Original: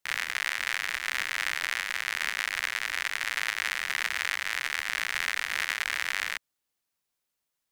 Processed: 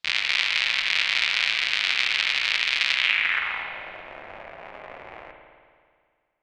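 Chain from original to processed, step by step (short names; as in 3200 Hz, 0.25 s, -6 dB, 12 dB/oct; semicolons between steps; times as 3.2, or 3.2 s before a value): low-pass sweep 3500 Hz -> 540 Hz, 3.53–4.48; varispeed +20%; spring tank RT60 2 s, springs 54 ms, chirp 75 ms, DRR 3 dB; gain +3 dB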